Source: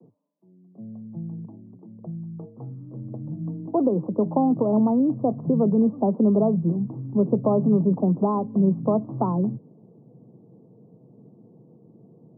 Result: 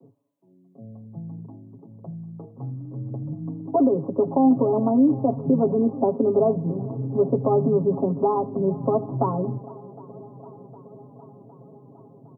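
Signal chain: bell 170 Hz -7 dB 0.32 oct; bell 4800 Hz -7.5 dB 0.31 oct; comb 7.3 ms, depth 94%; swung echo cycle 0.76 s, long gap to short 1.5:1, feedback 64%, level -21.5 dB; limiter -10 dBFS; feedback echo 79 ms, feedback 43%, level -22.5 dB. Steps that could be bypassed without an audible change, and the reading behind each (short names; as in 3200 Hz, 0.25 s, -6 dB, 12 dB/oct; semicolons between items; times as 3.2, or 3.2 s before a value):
bell 4800 Hz: input band ends at 1100 Hz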